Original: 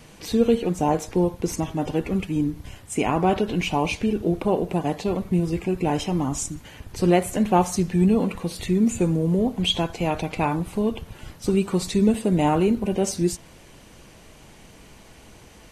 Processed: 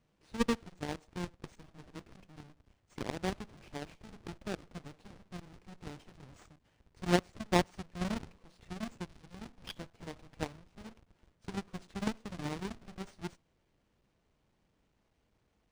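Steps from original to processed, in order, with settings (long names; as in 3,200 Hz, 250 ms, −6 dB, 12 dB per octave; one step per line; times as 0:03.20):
each half-wave held at its own peak
harmonic generator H 3 −9 dB, 8 −34 dB, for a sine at −5 dBFS
linearly interpolated sample-rate reduction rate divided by 3×
level −8 dB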